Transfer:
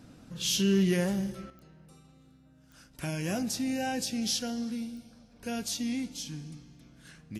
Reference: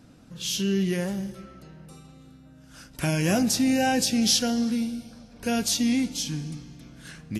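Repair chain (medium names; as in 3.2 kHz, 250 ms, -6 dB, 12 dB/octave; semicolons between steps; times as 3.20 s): clip repair -18.5 dBFS; de-click; gain correction +9 dB, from 1.50 s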